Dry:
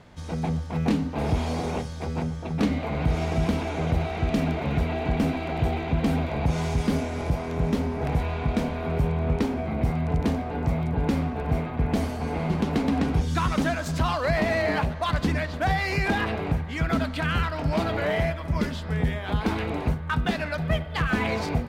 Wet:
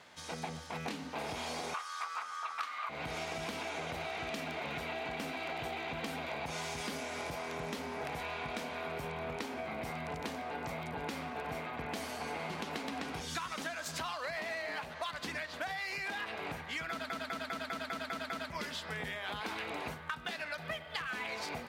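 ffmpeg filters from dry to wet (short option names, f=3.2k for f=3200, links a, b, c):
-filter_complex "[0:a]asettb=1/sr,asplit=3[a][b][c];[a]atrim=end=1.744[d];[b]atrim=start=1.74:end=2.89,asetpts=PTS-STARTPTS,afade=t=in:d=0.004:c=qsin,afade=t=out:st=1.146:d=0.004:c=qsin,highpass=f=1.2k:t=q:w=9.5[e];[c]atrim=start=2.886[f];[d][e]acrossfade=d=0.004:c1=hsin:c2=qsin[g];[g][f]acrossfade=d=0.004:c1=qsin:c2=hsin,asplit=9[h][i][j][k][l][m][n][o][p];[h]atrim=end=17.102[q];[i]atrim=start=16.898:end=17.102[r];[j]atrim=start=16.898:end=17.102[s];[k]atrim=start=16.898:end=17.102[t];[l]atrim=start=16.898:end=17.102[u];[m]atrim=start=16.898:end=17.102[v];[n]atrim=start=16.898:end=17.102[w];[o]atrim=start=16.898:end=17.102[x];[p]atrim=start=18.498[y];[q][r]acrossfade=d=0.004:c1=hsin:c2=hsin[z];[z][s]acrossfade=d=0.004:c1=hsin:c2=hsin[aa];[aa][t]acrossfade=d=0.004:c1=hsin:c2=hsin[ab];[ab][u]acrossfade=d=0.004:c1=hsin:c2=hsin[ac];[ac][v]acrossfade=d=0.004:c1=hsin:c2=hsin[ad];[ad][w]acrossfade=d=0.004:c1=hsin:c2=hsin[ae];[ae][x]acrossfade=d=0.004:c1=hsin:c2=hsin[af];[af][y]acrossfade=d=0.004:c1=hsin:c2=hsin,highpass=f=1.5k:p=1,acompressor=threshold=-38dB:ratio=10,volume=2.5dB"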